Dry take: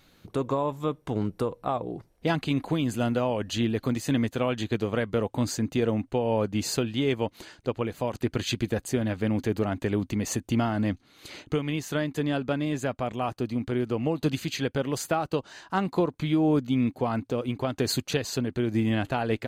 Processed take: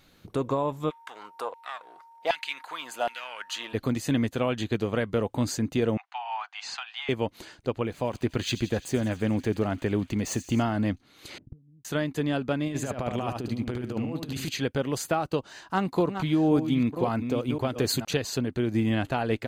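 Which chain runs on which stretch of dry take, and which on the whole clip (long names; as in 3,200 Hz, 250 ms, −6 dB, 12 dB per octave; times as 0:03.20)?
0:00.89–0:03.73: gain on one half-wave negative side −3 dB + auto-filter high-pass saw down 1.3 Hz 680–2,500 Hz + steady tone 920 Hz −50 dBFS
0:05.97–0:07.09: Butterworth high-pass 720 Hz 96 dB per octave + mid-hump overdrive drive 8 dB, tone 5,000 Hz, clips at −19 dBFS + high-frequency loss of the air 130 metres
0:07.83–0:10.63: running median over 3 samples + delay with a high-pass on its return 86 ms, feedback 74%, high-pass 3,000 Hz, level −12.5 dB
0:11.38–0:11.85: low-pass with resonance 180 Hz, resonance Q 1.6 + gate with flip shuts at −28 dBFS, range −28 dB
0:12.67–0:14.49: compressor whose output falls as the input rises −30 dBFS, ratio −0.5 + single-tap delay 74 ms −5 dB
0:15.44–0:18.05: delay that plays each chunk backwards 536 ms, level −8 dB + high-shelf EQ 11,000 Hz +4 dB
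whole clip: no processing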